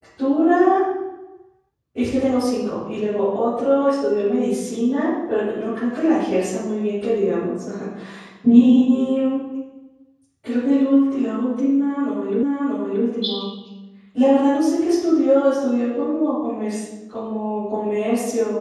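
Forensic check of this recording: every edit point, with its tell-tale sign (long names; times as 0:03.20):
0:12.43: the same again, the last 0.63 s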